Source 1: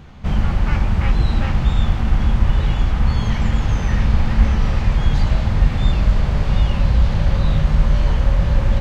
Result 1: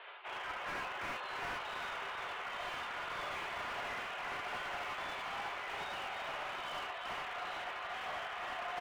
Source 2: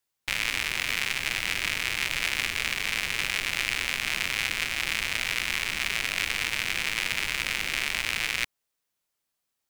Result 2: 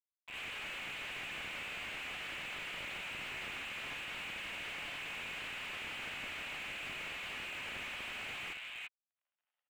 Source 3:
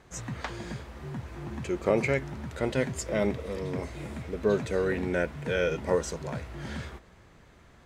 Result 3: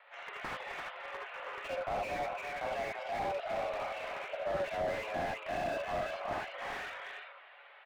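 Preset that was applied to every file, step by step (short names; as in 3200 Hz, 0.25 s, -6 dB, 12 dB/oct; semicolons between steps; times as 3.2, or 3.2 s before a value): reverb removal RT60 0.74 s; tilt shelf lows -4.5 dB, about 1300 Hz; AGC gain up to 4 dB; limiter -12 dBFS; reverse; compressor 6:1, threshold -29 dBFS; reverse; bit-crush 11-bit; on a send: echo 0.341 s -7.5 dB; on the sum: mistuned SSB +170 Hz 390–3000 Hz; non-linear reverb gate 0.1 s rising, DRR -0.5 dB; slew limiter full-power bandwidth 19 Hz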